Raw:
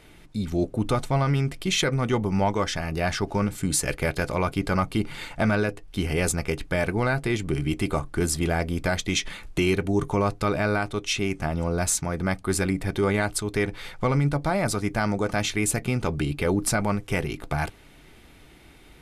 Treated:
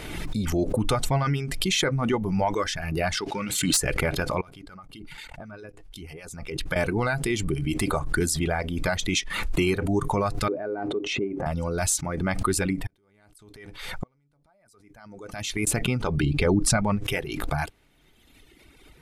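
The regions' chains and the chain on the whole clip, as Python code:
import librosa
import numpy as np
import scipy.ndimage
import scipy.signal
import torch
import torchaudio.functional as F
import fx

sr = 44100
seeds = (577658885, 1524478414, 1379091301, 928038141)

y = fx.chain(x, sr, fx.weighting(curve='D'),
    fx.tube_stage(drive_db=13.0, bias=0.6), at=(3.17, 3.77))
y = fx.chain(y, sr, fx.level_steps(step_db=19),
    fx.harmonic_tremolo(hz=8.0, depth_pct=50, crossover_hz=1900.0), at=(4.41, 6.76))
y = fx.chain(y, sr, fx.transient(attack_db=5, sustain_db=11),
    fx.bandpass_q(hz=390.0, q=1.7), at=(10.48, 11.46))
y = fx.chain(y, sr, fx.high_shelf(hz=5600.0, db=5.0),
    fx.gate_flip(shuts_db=-19.0, range_db=-35), at=(12.84, 15.67))
y = fx.chain(y, sr, fx.lowpass(hz=9000.0, slope=12),
    fx.low_shelf(hz=300.0, db=6.0), at=(16.23, 17.04))
y = fx.dereverb_blind(y, sr, rt60_s=1.9)
y = fx.pre_swell(y, sr, db_per_s=37.0)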